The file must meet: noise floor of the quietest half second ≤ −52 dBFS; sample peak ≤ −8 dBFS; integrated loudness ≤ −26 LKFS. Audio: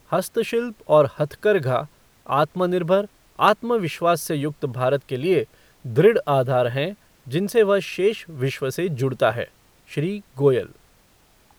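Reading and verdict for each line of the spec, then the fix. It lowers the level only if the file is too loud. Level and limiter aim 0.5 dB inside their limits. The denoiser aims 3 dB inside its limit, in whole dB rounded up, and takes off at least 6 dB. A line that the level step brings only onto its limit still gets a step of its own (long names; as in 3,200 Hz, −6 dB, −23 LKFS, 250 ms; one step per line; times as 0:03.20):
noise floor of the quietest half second −57 dBFS: in spec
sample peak −4.0 dBFS: out of spec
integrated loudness −22.0 LKFS: out of spec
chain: level −4.5 dB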